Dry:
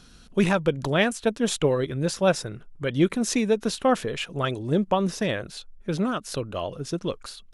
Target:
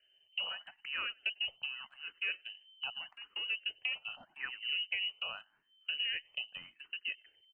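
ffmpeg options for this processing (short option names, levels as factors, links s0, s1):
-filter_complex "[0:a]asoftclip=type=tanh:threshold=0.15,asplit=4[s0][s1][s2][s3];[s1]adelay=95,afreqshift=-100,volume=0.178[s4];[s2]adelay=190,afreqshift=-200,volume=0.0661[s5];[s3]adelay=285,afreqshift=-300,volume=0.0243[s6];[s0][s4][s5][s6]amix=inputs=4:normalize=0,acompressor=threshold=0.0251:ratio=12,lowpass=f=2600:t=q:w=0.5098,lowpass=f=2600:t=q:w=0.6013,lowpass=f=2600:t=q:w=0.9,lowpass=f=2600:t=q:w=2.563,afreqshift=-3100,agate=range=0.126:threshold=0.0158:ratio=16:detection=peak,asplit=2[s7][s8];[s8]afreqshift=0.83[s9];[s7][s9]amix=inputs=2:normalize=1"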